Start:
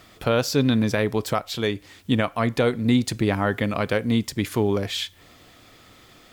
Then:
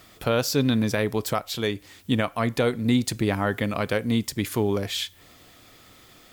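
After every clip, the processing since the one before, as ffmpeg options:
ffmpeg -i in.wav -af "highshelf=frequency=8000:gain=8,volume=-2dB" out.wav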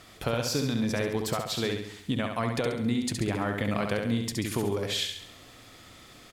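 ffmpeg -i in.wav -filter_complex "[0:a]lowpass=11000,acompressor=threshold=-26dB:ratio=6,asplit=2[link_01][link_02];[link_02]aecho=0:1:68|136|204|272|340|408:0.562|0.276|0.135|0.0662|0.0324|0.0159[link_03];[link_01][link_03]amix=inputs=2:normalize=0" out.wav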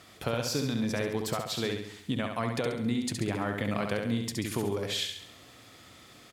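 ffmpeg -i in.wav -af "highpass=69,volume=-2dB" out.wav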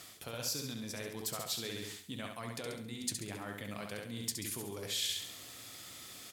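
ffmpeg -i in.wav -af "areverse,acompressor=threshold=-37dB:ratio=6,areverse,flanger=delay=5.8:depth=5.5:regen=-66:speed=1.7:shape=sinusoidal,crystalizer=i=3.5:c=0,volume=1dB" out.wav

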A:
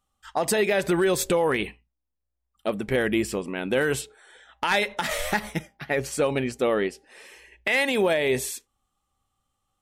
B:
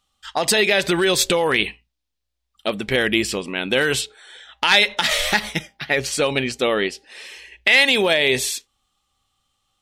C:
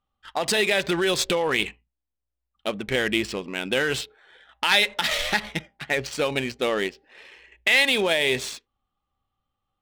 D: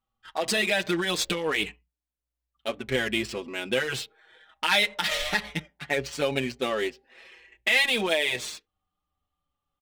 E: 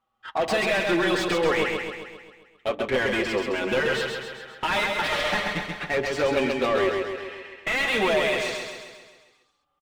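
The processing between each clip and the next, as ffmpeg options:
ffmpeg -i in.wav -af "equalizer=frequency=3800:width_type=o:width=1.8:gain=12.5,volume=2dB" out.wav
ffmpeg -i in.wav -af "adynamicsmooth=sensitivity=3.5:basefreq=1700,volume=-4.5dB" out.wav
ffmpeg -i in.wav -filter_complex "[0:a]asplit=2[link_01][link_02];[link_02]adelay=5.7,afreqshift=-0.27[link_03];[link_01][link_03]amix=inputs=2:normalize=1" out.wav
ffmpeg -i in.wav -filter_complex "[0:a]asplit=2[link_01][link_02];[link_02]highpass=frequency=720:poles=1,volume=25dB,asoftclip=type=tanh:threshold=-8dB[link_03];[link_01][link_03]amix=inputs=2:normalize=0,lowpass=frequency=1000:poles=1,volume=-6dB,asplit=2[link_04][link_05];[link_05]aecho=0:1:133|266|399|532|665|798|931|1064:0.631|0.353|0.198|0.111|0.0621|0.0347|0.0195|0.0109[link_06];[link_04][link_06]amix=inputs=2:normalize=0,volume=-4dB" out.wav

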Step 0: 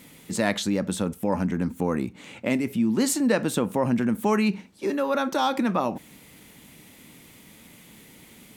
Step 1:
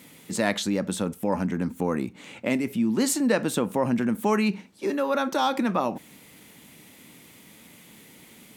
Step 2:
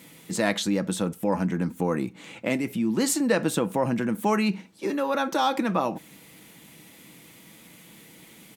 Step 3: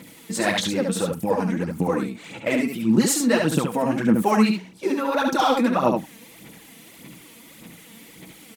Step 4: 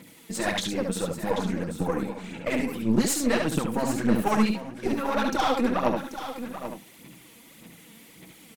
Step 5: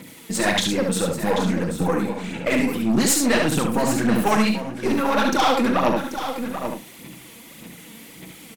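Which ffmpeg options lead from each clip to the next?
ffmpeg -i in.wav -af "highpass=frequency=120:poles=1" out.wav
ffmpeg -i in.wav -af "aecho=1:1:6.1:0.32" out.wav
ffmpeg -i in.wav -af "aphaser=in_gain=1:out_gain=1:delay=4.5:decay=0.68:speed=1.7:type=sinusoidal,aecho=1:1:71:0.596" out.wav
ffmpeg -i in.wav -af "aeval=exprs='0.562*(cos(1*acos(clip(val(0)/0.562,-1,1)))-cos(1*PI/2))+0.0562*(cos(6*acos(clip(val(0)/0.562,-1,1)))-cos(6*PI/2))':channel_layout=same,aecho=1:1:786:0.282,volume=-5dB" out.wav
ffmpeg -i in.wav -filter_complex "[0:a]acrossover=split=1200[link_01][link_02];[link_01]asoftclip=type=tanh:threshold=-21.5dB[link_03];[link_03][link_02]amix=inputs=2:normalize=0,asplit=2[link_04][link_05];[link_05]adelay=39,volume=-11.5dB[link_06];[link_04][link_06]amix=inputs=2:normalize=0,volume=7.5dB" out.wav

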